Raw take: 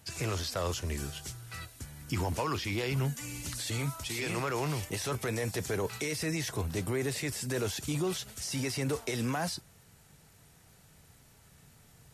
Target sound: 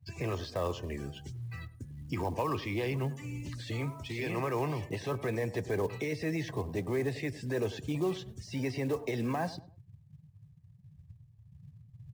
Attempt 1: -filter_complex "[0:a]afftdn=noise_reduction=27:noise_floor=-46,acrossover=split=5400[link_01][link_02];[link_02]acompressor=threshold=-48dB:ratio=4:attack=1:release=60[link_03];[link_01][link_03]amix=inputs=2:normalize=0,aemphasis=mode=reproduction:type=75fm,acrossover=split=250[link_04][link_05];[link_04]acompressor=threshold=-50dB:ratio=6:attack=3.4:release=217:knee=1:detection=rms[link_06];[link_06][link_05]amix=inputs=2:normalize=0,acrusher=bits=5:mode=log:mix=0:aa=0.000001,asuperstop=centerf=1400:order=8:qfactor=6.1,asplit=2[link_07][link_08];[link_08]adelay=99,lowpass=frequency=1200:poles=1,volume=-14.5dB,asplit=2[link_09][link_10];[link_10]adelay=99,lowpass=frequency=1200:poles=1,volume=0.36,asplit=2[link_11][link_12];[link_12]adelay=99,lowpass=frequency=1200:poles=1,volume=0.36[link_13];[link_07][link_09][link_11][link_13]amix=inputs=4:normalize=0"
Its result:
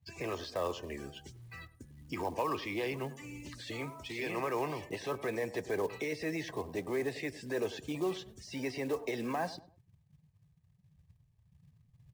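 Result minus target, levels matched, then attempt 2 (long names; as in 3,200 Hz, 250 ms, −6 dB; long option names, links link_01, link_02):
125 Hz band −8.5 dB
-filter_complex "[0:a]afftdn=noise_reduction=27:noise_floor=-46,acrossover=split=5400[link_01][link_02];[link_02]acompressor=threshold=-48dB:ratio=4:attack=1:release=60[link_03];[link_01][link_03]amix=inputs=2:normalize=0,aemphasis=mode=reproduction:type=75fm,acrossover=split=250[link_04][link_05];[link_04]acompressor=threshold=-50dB:ratio=6:attack=3.4:release=217:knee=1:detection=rms[link_06];[link_06][link_05]amix=inputs=2:normalize=0,acrusher=bits=5:mode=log:mix=0:aa=0.000001,asuperstop=centerf=1400:order=8:qfactor=6.1,equalizer=frequency=110:width_type=o:width=1.6:gain=12.5,asplit=2[link_07][link_08];[link_08]adelay=99,lowpass=frequency=1200:poles=1,volume=-14.5dB,asplit=2[link_09][link_10];[link_10]adelay=99,lowpass=frequency=1200:poles=1,volume=0.36,asplit=2[link_11][link_12];[link_12]adelay=99,lowpass=frequency=1200:poles=1,volume=0.36[link_13];[link_07][link_09][link_11][link_13]amix=inputs=4:normalize=0"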